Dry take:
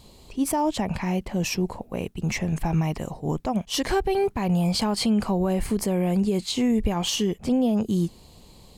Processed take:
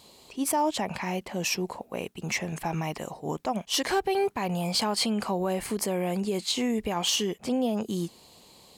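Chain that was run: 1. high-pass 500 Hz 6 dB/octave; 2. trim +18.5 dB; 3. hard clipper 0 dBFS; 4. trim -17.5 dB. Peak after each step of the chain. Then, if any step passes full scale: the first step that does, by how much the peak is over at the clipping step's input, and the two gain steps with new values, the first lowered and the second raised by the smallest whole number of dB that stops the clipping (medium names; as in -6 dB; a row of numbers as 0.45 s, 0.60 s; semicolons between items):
-15.0 dBFS, +3.5 dBFS, 0.0 dBFS, -17.5 dBFS; step 2, 3.5 dB; step 2 +14.5 dB, step 4 -13.5 dB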